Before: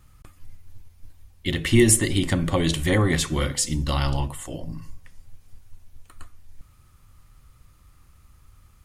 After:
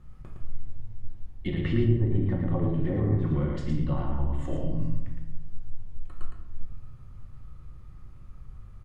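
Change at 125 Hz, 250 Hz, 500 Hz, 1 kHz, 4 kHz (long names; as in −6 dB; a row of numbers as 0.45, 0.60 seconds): −1.0 dB, −4.5 dB, −7.0 dB, −9.0 dB, below −20 dB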